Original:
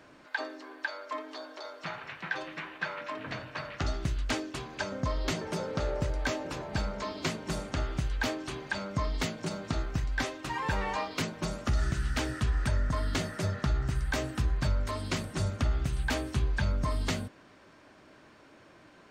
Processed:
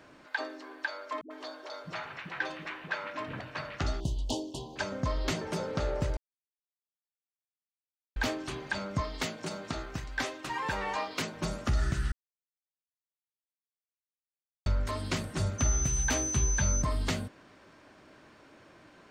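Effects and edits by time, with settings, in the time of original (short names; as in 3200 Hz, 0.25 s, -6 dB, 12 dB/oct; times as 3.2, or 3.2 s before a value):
1.21–3.41 dispersion highs, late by 95 ms, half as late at 320 Hz
4–4.76 Chebyshev band-stop 960–3000 Hz, order 4
6.17–8.16 mute
9.01–11.34 low shelf 160 Hz -11 dB
12.12–14.66 mute
15.58–16.81 whine 6100 Hz -31 dBFS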